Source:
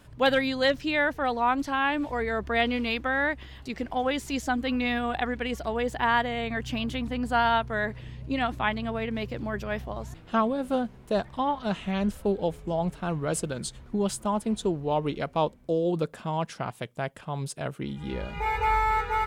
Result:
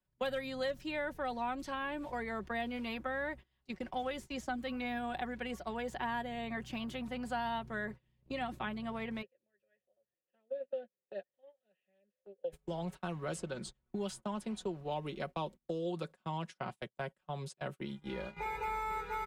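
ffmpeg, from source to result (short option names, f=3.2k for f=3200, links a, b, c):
-filter_complex "[0:a]asplit=3[a][b][c];[a]afade=t=out:st=9.21:d=0.02[d];[b]asplit=3[e][f][g];[e]bandpass=f=530:t=q:w=8,volume=0dB[h];[f]bandpass=f=1.84k:t=q:w=8,volume=-6dB[i];[g]bandpass=f=2.48k:t=q:w=8,volume=-9dB[j];[h][i][j]amix=inputs=3:normalize=0,afade=t=in:st=9.21:d=0.02,afade=t=out:st=12.52:d=0.02[k];[c]afade=t=in:st=12.52:d=0.02[l];[d][k][l]amix=inputs=3:normalize=0,asettb=1/sr,asplit=3[m][n][o];[m]atrim=end=15.784[p];[n]atrim=start=15.78:end=17.7,asetpts=PTS-STARTPTS,afade=t=in:d=0.004:c=qsin,afade=t=out:st=1.916:d=0.004:c=qsin,lowpass=11k[q];[o]atrim=start=17.696[r];[p][q]acrossfade=d=0.004:c1=hsin:c2=qsin[s];[s][r]acrossfade=d=0.004:c1=qsin:c2=hsin,agate=range=-29dB:threshold=-34dB:ratio=16:detection=peak,aecho=1:1:5.4:0.52,acrossover=split=160|540|1700|7700[t][u][v][w][x];[t]acompressor=threshold=-48dB:ratio=4[y];[u]acompressor=threshold=-35dB:ratio=4[z];[v]acompressor=threshold=-36dB:ratio=4[aa];[w]acompressor=threshold=-42dB:ratio=4[ab];[x]acompressor=threshold=-56dB:ratio=4[ac];[y][z][aa][ab][ac]amix=inputs=5:normalize=0,volume=-5.5dB"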